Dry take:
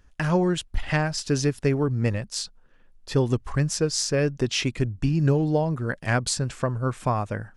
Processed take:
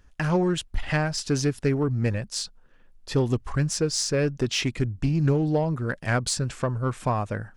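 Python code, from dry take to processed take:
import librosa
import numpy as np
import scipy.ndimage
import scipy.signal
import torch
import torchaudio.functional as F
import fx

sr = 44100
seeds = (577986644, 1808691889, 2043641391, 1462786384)

p1 = 10.0 ** (-25.0 / 20.0) * np.tanh(x / 10.0 ** (-25.0 / 20.0))
p2 = x + (p1 * librosa.db_to_amplitude(-7.0))
p3 = fx.doppler_dist(p2, sr, depth_ms=0.12)
y = p3 * librosa.db_to_amplitude(-2.5)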